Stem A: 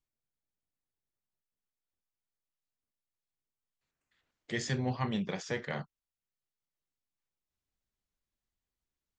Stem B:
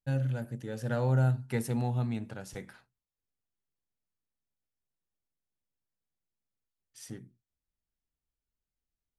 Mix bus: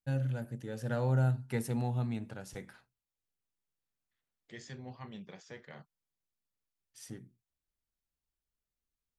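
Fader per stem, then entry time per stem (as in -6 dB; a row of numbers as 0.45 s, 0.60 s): -13.5 dB, -2.5 dB; 0.00 s, 0.00 s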